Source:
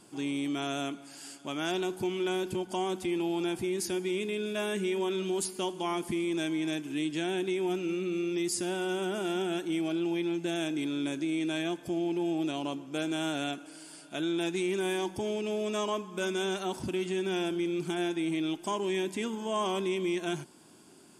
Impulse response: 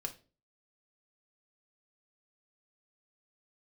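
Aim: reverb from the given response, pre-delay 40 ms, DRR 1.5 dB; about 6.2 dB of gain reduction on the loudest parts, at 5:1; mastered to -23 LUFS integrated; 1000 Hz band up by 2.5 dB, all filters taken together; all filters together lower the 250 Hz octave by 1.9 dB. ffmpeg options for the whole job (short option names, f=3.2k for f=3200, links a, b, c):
-filter_complex "[0:a]equalizer=f=250:t=o:g=-3.5,equalizer=f=1k:t=o:g=3.5,acompressor=threshold=-33dB:ratio=5,asplit=2[a][b];[1:a]atrim=start_sample=2205,adelay=40[c];[b][c]afir=irnorm=-1:irlink=0,volume=-1dB[d];[a][d]amix=inputs=2:normalize=0,volume=12dB"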